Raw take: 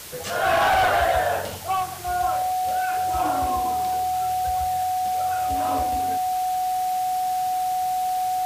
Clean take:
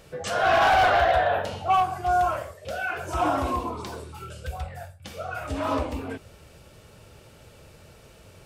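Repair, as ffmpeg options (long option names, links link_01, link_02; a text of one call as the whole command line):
ffmpeg -i in.wav -af "bandreject=frequency=740:width=30,afwtdn=0.013,asetnsamples=nb_out_samples=441:pad=0,asendcmd='1.57 volume volume 3.5dB',volume=0dB" out.wav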